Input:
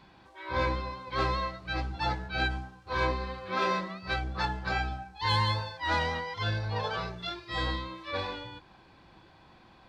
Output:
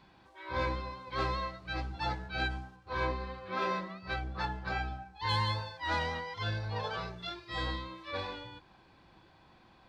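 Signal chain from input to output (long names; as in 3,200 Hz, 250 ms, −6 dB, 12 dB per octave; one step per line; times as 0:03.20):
0:02.76–0:05.29: high-shelf EQ 4,700 Hz −7 dB
level −4 dB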